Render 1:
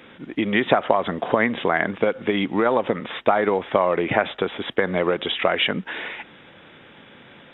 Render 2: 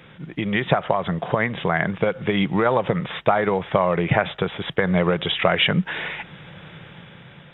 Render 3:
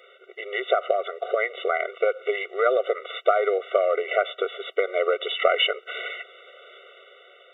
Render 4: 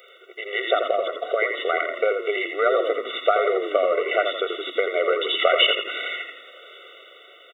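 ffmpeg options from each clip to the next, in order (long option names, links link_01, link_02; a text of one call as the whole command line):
ffmpeg -i in.wav -af "lowshelf=frequency=200:width_type=q:width=3:gain=6.5,dynaudnorm=framelen=170:gausssize=11:maxgain=10dB,volume=-1dB" out.wav
ffmpeg -i in.wav -af "afftfilt=real='re*eq(mod(floor(b*sr/1024/380),2),1)':imag='im*eq(mod(floor(b*sr/1024/380),2),1)':win_size=1024:overlap=0.75" out.wav
ffmpeg -i in.wav -filter_complex "[0:a]crystalizer=i=2.5:c=0,asplit=2[link_01][link_02];[link_02]asplit=5[link_03][link_04][link_05][link_06][link_07];[link_03]adelay=84,afreqshift=-35,volume=-6dB[link_08];[link_04]adelay=168,afreqshift=-70,volume=-13.5dB[link_09];[link_05]adelay=252,afreqshift=-105,volume=-21.1dB[link_10];[link_06]adelay=336,afreqshift=-140,volume=-28.6dB[link_11];[link_07]adelay=420,afreqshift=-175,volume=-36.1dB[link_12];[link_08][link_09][link_10][link_11][link_12]amix=inputs=5:normalize=0[link_13];[link_01][link_13]amix=inputs=2:normalize=0" out.wav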